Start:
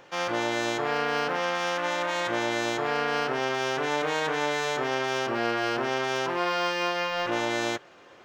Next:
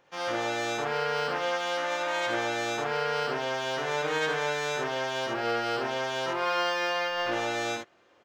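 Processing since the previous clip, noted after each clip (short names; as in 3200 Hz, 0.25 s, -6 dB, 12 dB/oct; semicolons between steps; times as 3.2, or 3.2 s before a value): on a send: early reflections 49 ms -3.5 dB, 70 ms -3.5 dB; on the sum: upward expander 1.5:1, over -43 dBFS; gain -3 dB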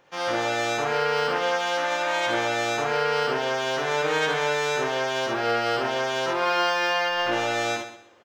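feedback echo 0.127 s, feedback 26%, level -12 dB; gain +4.5 dB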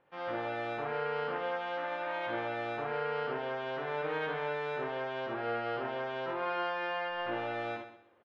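air absorption 430 m; gain -8.5 dB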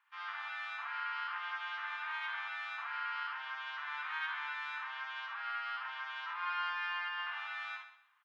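steep high-pass 1000 Hz 48 dB/oct; gain +1 dB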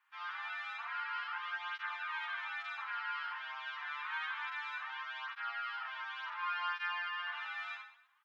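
tape flanging out of phase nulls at 0.28 Hz, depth 7.1 ms; gain +2.5 dB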